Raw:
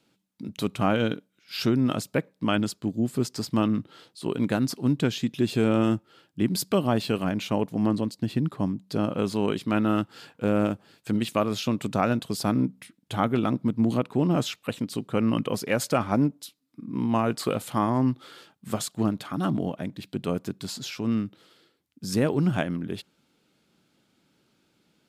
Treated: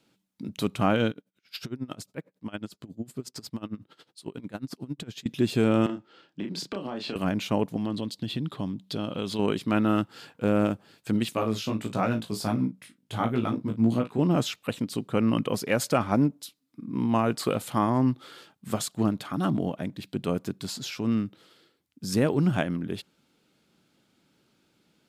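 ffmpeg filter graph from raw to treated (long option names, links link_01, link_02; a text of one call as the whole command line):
ffmpeg -i in.wav -filter_complex "[0:a]asettb=1/sr,asplit=3[link_01][link_02][link_03];[link_01]atrim=end=1.104[link_04];[link_02]atrim=start=1.1:end=5.26,asetpts=PTS-STARTPTS,afade=type=in:duration=0.004:curve=qsin,afade=type=out:start_time=4.156:duration=0.004:curve=qsin,acompressor=threshold=-29dB:ratio=2.5:attack=3.2:release=140:knee=1:detection=peak,aeval=exprs='val(0)*pow(10,-22*(0.5-0.5*cos(2*PI*11*n/s))/20)':channel_layout=same[link_05];[link_03]atrim=start=5.256[link_06];[link_04][link_05]acrossfade=duration=0.004:curve1=hsin:curve2=qsin[link_07];[link_07][link_06]acrossfade=duration=0.004:curve1=qsin:curve2=hsin,asettb=1/sr,asplit=3[link_08][link_09][link_10];[link_08]atrim=end=5.864[link_11];[link_09]atrim=start=5.86:end=7.16,asetpts=PTS-STARTPTS,afade=type=in:duration=0.004:curve=qsin,afade=type=out:start_time=1.296:duration=0.004:curve=qsin,acrossover=split=170 6400:gain=0.158 1 0.0708[link_12][link_13][link_14];[link_12][link_13][link_14]amix=inputs=3:normalize=0,acompressor=threshold=-30dB:ratio=6:attack=3.2:release=140:knee=1:detection=peak,asplit=2[link_15][link_16];[link_16]adelay=30,volume=-5dB[link_17];[link_15][link_17]amix=inputs=2:normalize=0,atrim=end_sample=57330[link_18];[link_10]atrim=start=7.156[link_19];[link_11][link_18]acrossfade=duration=0.004:curve1=hsin:curve2=qsin[link_20];[link_20][link_19]acrossfade=duration=0.004:curve1=qsin:curve2=hsin,asettb=1/sr,asplit=3[link_21][link_22][link_23];[link_21]atrim=end=7.764[link_24];[link_22]atrim=start=7.76:end=9.39,asetpts=PTS-STARTPTS,afade=type=in:duration=0.004:curve=qsin,afade=type=out:start_time=1.626:duration=0.004:curve=qsin,equalizer=frequency=3400:width_type=o:width=0.59:gain=12,acompressor=threshold=-30dB:ratio=2:attack=3.2:release=140:knee=1:detection=peak[link_25];[link_23]atrim=start=9.386[link_26];[link_24][link_25]acrossfade=duration=0.004:curve1=hsin:curve2=qsin[link_27];[link_27][link_26]acrossfade=duration=0.004:curve1=qsin:curve2=hsin,asettb=1/sr,asplit=3[link_28][link_29][link_30];[link_28]atrim=end=11.344[link_31];[link_29]atrim=start=11.34:end=14.19,asetpts=PTS-STARTPTS,afade=type=in:duration=0.004:curve=qsin,afade=type=out:start_time=2.846:duration=0.004:curve=qsin,asplit=2[link_32][link_33];[link_33]adelay=36,volume=-11dB[link_34];[link_32][link_34]amix=inputs=2:normalize=0,atrim=end_sample=125685,flanger=delay=16.5:depth=3.1:speed=1.5[link_35];[link_30]atrim=start=14.186[link_36];[link_31][link_35]acrossfade=duration=0.004:curve1=hsin:curve2=qsin[link_37];[link_37][link_36]acrossfade=duration=0.004:curve1=qsin:curve2=hsin" out.wav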